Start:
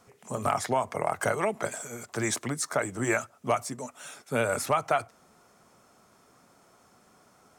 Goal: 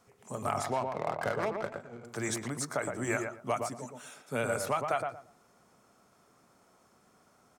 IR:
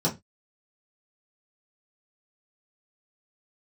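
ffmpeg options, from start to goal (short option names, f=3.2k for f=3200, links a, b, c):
-filter_complex "[0:a]asettb=1/sr,asplit=3[a][b][c];[a]atrim=end=0.734[d];[b]atrim=start=0.73:end=2.05,asetpts=PTS-STARTPTS,afade=t=in:d=0.004:c=qsin,afade=t=out:st=1.316:d=0.004:c=qsin,adynamicsmooth=sensitivity=5.5:basefreq=780[e];[c]atrim=start=2.046[f];[d][e]acrossfade=d=0.004:c1=hsin:c2=qsin[g];[g][f]acrossfade=d=0.004:c1=qsin:c2=hsin,asplit=2[h][i];[i]adelay=116,lowpass=f=1.3k:p=1,volume=-3.5dB,asplit=2[j][k];[k]adelay=116,lowpass=f=1.3k:p=1,volume=0.23,asplit=2[l][m];[m]adelay=116,lowpass=f=1.3k:p=1,volume=0.23[n];[h][j][l][n]amix=inputs=4:normalize=0,volume=-5.5dB"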